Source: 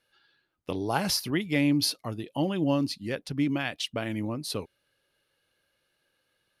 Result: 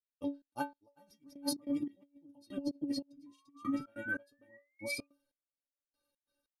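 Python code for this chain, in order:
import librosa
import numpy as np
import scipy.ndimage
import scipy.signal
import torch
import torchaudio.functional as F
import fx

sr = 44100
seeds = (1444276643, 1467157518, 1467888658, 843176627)

y = fx.granulator(x, sr, seeds[0], grain_ms=100.0, per_s=20.0, spray_ms=562.0, spread_st=0)
y = fx.spec_paint(y, sr, seeds[1], shape='rise', start_s=3.26, length_s=1.81, low_hz=1000.0, high_hz=2500.0, level_db=-29.0)
y = fx.peak_eq(y, sr, hz=2200.0, db=-12.0, octaves=1.9)
y = fx.stiff_resonator(y, sr, f0_hz=280.0, decay_s=0.23, stiffness=0.008)
y = fx.over_compress(y, sr, threshold_db=-38.0, ratio=-0.5)
y = fx.step_gate(y, sr, bpm=144, pattern='..xx.xx....', floor_db=-24.0, edge_ms=4.5)
y = F.gain(torch.from_numpy(y), 5.0).numpy()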